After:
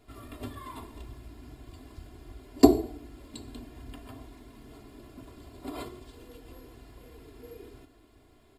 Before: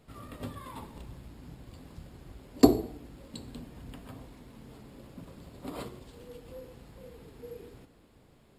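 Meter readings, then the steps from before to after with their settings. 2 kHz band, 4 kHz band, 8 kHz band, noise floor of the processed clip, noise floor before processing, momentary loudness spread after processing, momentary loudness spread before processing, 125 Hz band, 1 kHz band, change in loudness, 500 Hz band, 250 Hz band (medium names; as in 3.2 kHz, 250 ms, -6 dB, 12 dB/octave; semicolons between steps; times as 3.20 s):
+0.5 dB, +0.5 dB, +1.5 dB, -60 dBFS, -61 dBFS, 26 LU, 19 LU, -1.0 dB, +2.5 dB, +3.5 dB, +2.5 dB, +2.0 dB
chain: comb 2.9 ms, depth 80%; trim -1 dB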